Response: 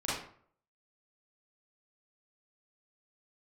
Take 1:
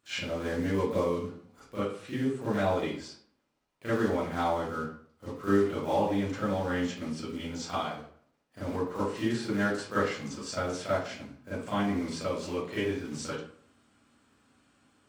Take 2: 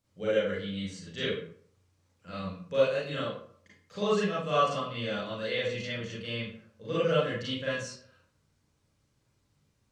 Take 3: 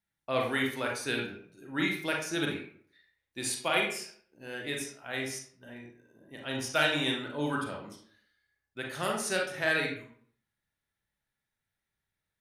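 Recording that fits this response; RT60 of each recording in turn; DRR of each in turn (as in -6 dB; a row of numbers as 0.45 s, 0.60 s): 2; 0.55 s, 0.55 s, 0.55 s; -14.0 dB, -9.5 dB, -0.5 dB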